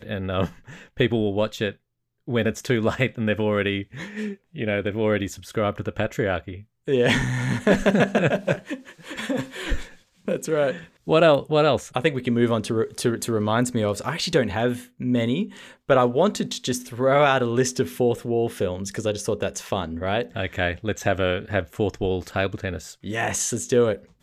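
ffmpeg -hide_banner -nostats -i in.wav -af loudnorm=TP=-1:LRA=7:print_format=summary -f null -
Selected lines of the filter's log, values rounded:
Input Integrated:    -23.9 LUFS
Input True Peak:      -6.1 dBTP
Input LRA:             3.9 LU
Input Threshold:     -34.1 LUFS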